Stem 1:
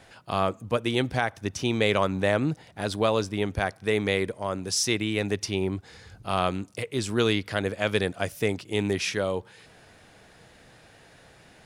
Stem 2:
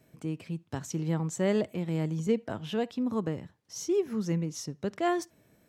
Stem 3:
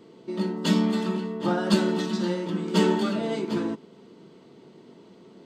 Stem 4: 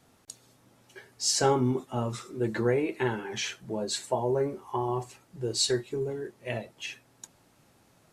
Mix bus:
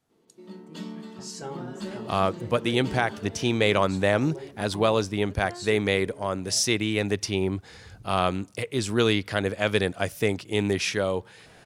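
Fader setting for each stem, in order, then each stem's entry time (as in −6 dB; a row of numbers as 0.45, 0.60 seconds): +1.5, −15.0, −15.5, −13.5 decibels; 1.80, 0.45, 0.10, 0.00 seconds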